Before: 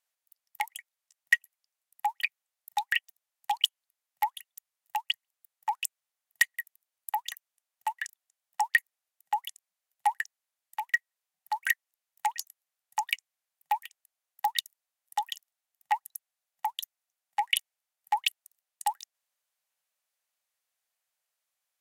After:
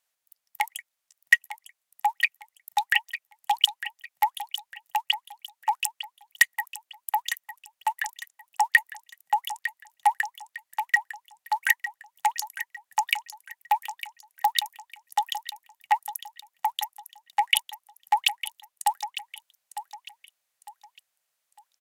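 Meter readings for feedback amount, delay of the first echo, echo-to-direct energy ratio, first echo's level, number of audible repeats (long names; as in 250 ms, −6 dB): 33%, 904 ms, −11.5 dB, −12.0 dB, 3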